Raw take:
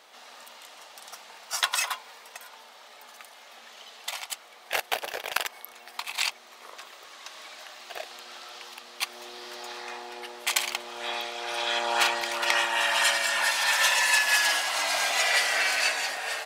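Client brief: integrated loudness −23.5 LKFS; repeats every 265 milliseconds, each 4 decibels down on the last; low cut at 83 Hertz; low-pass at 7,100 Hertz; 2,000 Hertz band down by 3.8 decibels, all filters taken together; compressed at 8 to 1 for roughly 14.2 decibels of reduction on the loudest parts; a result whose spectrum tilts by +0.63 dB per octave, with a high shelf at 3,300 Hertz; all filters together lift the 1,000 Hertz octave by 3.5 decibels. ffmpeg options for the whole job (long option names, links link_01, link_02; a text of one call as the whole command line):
ffmpeg -i in.wav -af "highpass=83,lowpass=7100,equalizer=frequency=1000:width_type=o:gain=6,equalizer=frequency=2000:width_type=o:gain=-4,highshelf=frequency=3300:gain=-8,acompressor=threshold=-36dB:ratio=8,aecho=1:1:265|530|795|1060|1325|1590|1855|2120|2385:0.631|0.398|0.25|0.158|0.0994|0.0626|0.0394|0.0249|0.0157,volume=15dB" out.wav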